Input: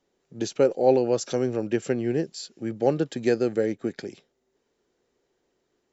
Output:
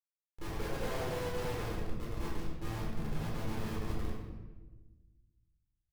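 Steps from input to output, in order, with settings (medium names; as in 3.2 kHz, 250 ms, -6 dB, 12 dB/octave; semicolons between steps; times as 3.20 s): 1.68–3.97 s: compressor with a negative ratio -33 dBFS, ratio -1; high-pass 100 Hz 12 dB/octave; delay 105 ms -6 dB; Chebyshev shaper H 5 -43 dB, 6 -12 dB, 8 -23 dB, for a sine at -6.5 dBFS; treble shelf 3.4 kHz -11 dB; chord resonator A2 sus4, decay 0.29 s; transient shaper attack +4 dB, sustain -9 dB; hum notches 50/100/150/200/250/300/350 Hz; Schmitt trigger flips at -43.5 dBFS; reverberation RT60 1.2 s, pre-delay 13 ms, DRR -6 dB; trim -4.5 dB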